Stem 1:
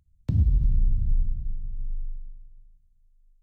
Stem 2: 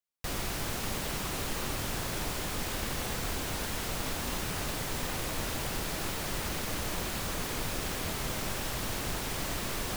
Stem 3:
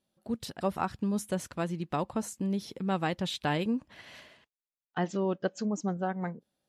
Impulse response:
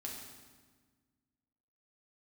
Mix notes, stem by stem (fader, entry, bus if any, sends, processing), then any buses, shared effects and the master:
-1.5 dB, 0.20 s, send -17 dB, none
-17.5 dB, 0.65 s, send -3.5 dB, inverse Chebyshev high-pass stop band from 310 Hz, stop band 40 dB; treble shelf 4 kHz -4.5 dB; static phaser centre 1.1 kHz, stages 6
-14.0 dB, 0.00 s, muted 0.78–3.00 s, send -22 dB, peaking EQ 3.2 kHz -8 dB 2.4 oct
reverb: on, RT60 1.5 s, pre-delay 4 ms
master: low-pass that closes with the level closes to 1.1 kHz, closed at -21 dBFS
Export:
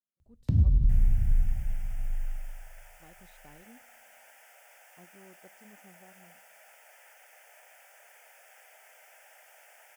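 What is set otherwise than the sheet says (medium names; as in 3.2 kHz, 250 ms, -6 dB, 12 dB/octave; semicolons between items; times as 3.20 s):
stem 3 -14.0 dB -> -25.5 dB; master: missing low-pass that closes with the level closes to 1.1 kHz, closed at -21 dBFS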